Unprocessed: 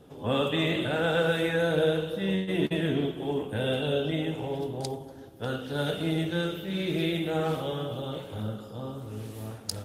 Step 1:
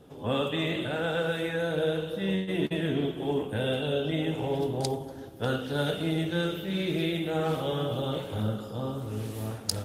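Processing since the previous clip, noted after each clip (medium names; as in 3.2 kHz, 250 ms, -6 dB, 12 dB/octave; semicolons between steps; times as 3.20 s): gain riding within 4 dB 0.5 s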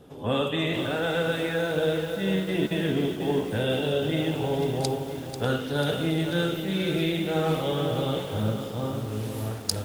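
bit-crushed delay 492 ms, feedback 55%, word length 7-bit, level -9 dB; trim +2.5 dB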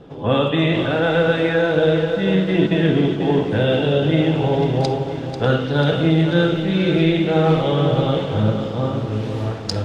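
distance through air 150 m; reverberation RT60 0.80 s, pre-delay 6 ms, DRR 11.5 dB; trim +8.5 dB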